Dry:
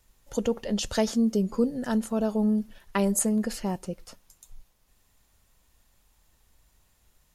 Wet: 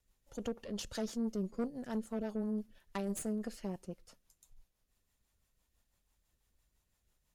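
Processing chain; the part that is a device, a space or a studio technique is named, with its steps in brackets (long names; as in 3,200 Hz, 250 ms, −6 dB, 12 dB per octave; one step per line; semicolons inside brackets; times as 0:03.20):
overdriven rotary cabinet (tube saturation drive 23 dB, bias 0.75; rotating-speaker cabinet horn 6 Hz)
level −6.5 dB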